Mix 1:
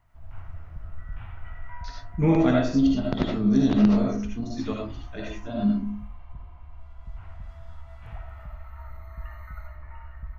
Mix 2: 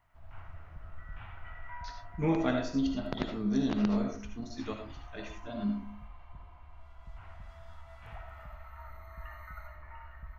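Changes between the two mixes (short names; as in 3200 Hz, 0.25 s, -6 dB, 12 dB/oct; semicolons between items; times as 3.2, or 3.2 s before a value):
speech: send -8.5 dB; master: add low shelf 320 Hz -9 dB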